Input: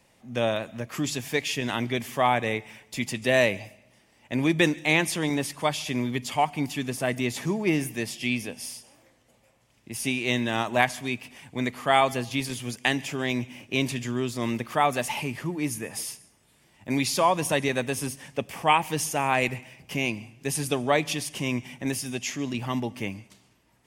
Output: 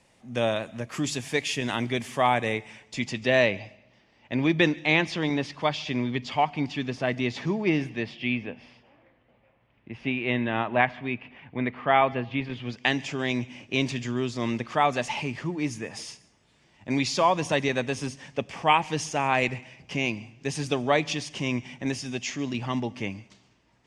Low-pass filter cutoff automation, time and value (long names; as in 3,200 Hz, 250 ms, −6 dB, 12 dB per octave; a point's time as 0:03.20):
low-pass filter 24 dB per octave
0:02.47 10,000 Hz
0:03.46 5,000 Hz
0:07.72 5,000 Hz
0:08.45 2,800 Hz
0:12.48 2,800 Hz
0:12.99 6,700 Hz